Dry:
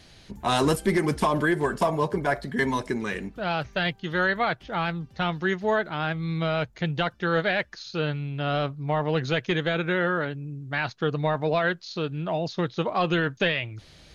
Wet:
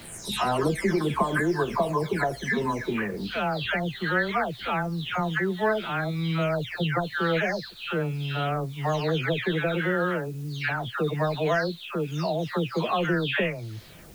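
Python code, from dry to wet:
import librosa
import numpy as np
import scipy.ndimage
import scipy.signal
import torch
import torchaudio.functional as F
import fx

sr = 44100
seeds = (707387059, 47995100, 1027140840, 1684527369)

y = fx.spec_delay(x, sr, highs='early', ms=429)
y = fx.quant_dither(y, sr, seeds[0], bits=10, dither='triangular')
y = fx.band_squash(y, sr, depth_pct=40)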